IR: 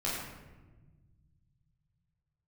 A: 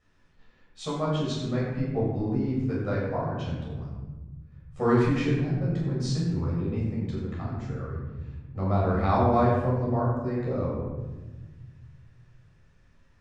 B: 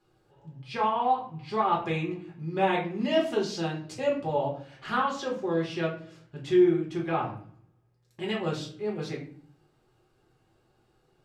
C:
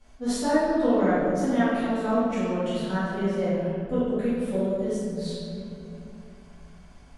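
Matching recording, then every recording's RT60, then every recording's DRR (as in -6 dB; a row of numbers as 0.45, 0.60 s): A; 1.2, 0.50, 2.8 s; -7.5, -3.5, -15.0 dB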